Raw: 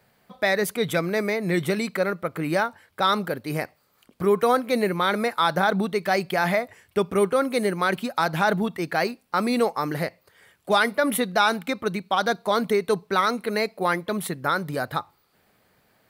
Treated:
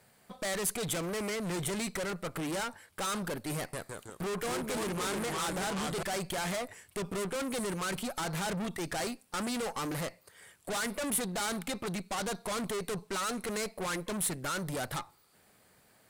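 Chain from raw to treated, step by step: 3.57–6.03 s: ever faster or slower copies 161 ms, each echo -2 st, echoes 3, each echo -6 dB; valve stage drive 34 dB, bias 0.6; peaking EQ 8.6 kHz +10.5 dB 0.94 oct; trim +1 dB

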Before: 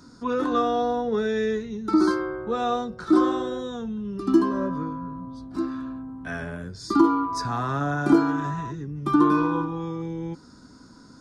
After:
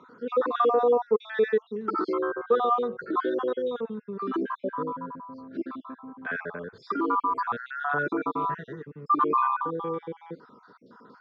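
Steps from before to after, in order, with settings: random holes in the spectrogram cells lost 48%; peak limiter -18.5 dBFS, peak gain reduction 11 dB; cabinet simulation 290–3200 Hz, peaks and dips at 300 Hz -8 dB, 460 Hz +8 dB, 700 Hz -4 dB, 1.2 kHz +5 dB, 2.7 kHz -5 dB; trim +3 dB

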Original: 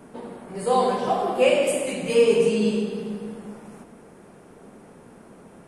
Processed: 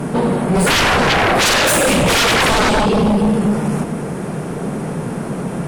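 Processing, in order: peaking EQ 150 Hz +11 dB 0.58 oct; in parallel at -2 dB: compression, threshold -29 dBFS, peak gain reduction 15.5 dB; on the sum: sine folder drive 18 dB, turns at -5.5 dBFS; trim -5 dB

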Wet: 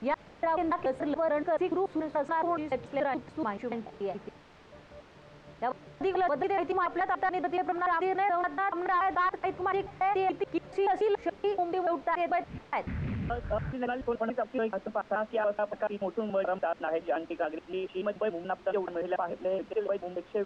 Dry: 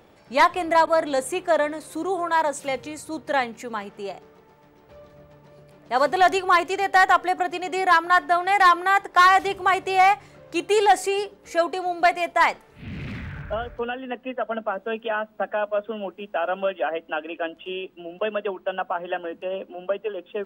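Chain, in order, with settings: slices played last to first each 143 ms, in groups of 3; expander -45 dBFS; in parallel at -4 dB: word length cut 6-bit, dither triangular; on the sum: tape spacing loss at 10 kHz 40 dB; peak limiter -17.5 dBFS, peak gain reduction 10 dB; trim -3.5 dB

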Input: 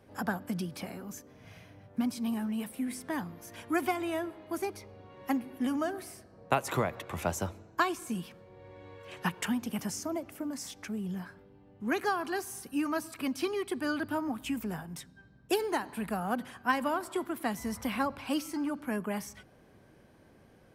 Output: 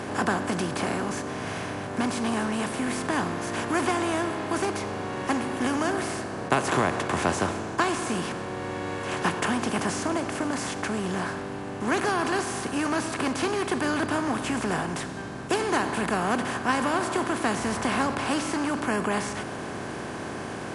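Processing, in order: spectral levelling over time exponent 0.4; MP3 48 kbps 24 kHz

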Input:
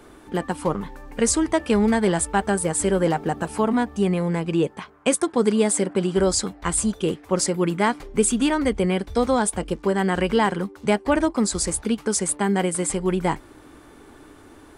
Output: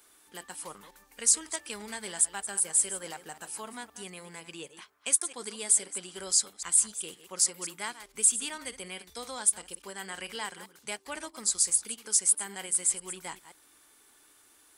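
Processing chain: chunks repeated in reverse 130 ms, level -13 dB; pre-emphasis filter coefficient 0.97

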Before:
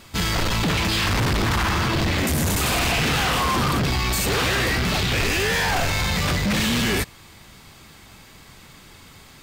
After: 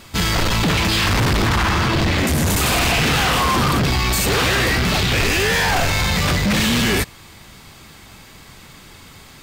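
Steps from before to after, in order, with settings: 1.47–2.49 s: treble shelf 9.2 kHz -5.5 dB; trim +4 dB

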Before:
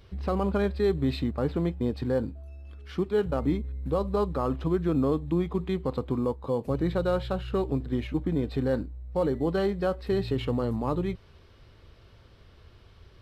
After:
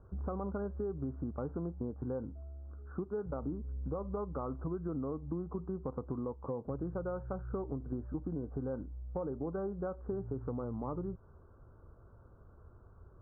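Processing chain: steep low-pass 1.5 kHz 96 dB/octave; compression 6:1, threshold -31 dBFS, peak gain reduction 10.5 dB; trim -3.5 dB

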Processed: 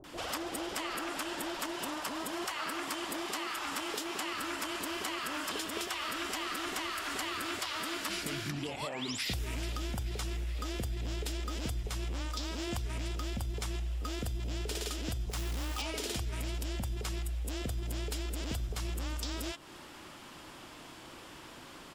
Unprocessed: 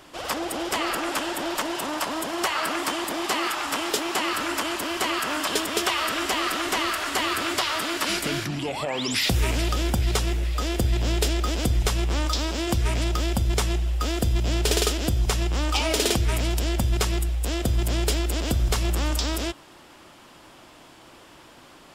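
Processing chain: compression 6:1, threshold -34 dBFS, peak gain reduction 15 dB; 15.26–15.78 s: companded quantiser 4-bit; bands offset in time lows, highs 40 ms, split 620 Hz

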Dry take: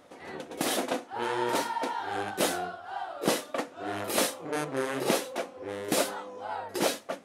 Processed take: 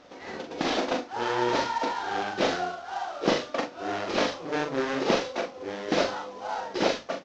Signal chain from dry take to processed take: CVSD coder 32 kbps; hum notches 50/100/150 Hz; doubling 41 ms -6 dB; trim +2.5 dB

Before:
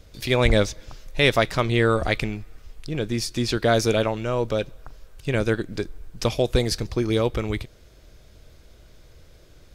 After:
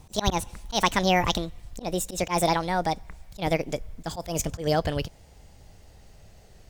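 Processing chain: gliding tape speed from 167% -> 124%; slow attack 103 ms; trim -1.5 dB

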